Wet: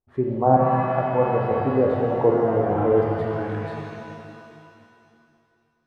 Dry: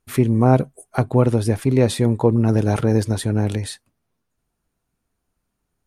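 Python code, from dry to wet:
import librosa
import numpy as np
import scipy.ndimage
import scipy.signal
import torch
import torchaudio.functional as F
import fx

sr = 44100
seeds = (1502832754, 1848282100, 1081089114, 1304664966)

y = fx.filter_sweep_lowpass(x, sr, from_hz=790.0, to_hz=1700.0, start_s=2.52, end_s=4.23, q=1.8)
y = fx.noise_reduce_blind(y, sr, reduce_db=11)
y = fx.rev_shimmer(y, sr, seeds[0], rt60_s=2.6, semitones=7, shimmer_db=-8, drr_db=-1.5)
y = F.gain(torch.from_numpy(y), -3.5).numpy()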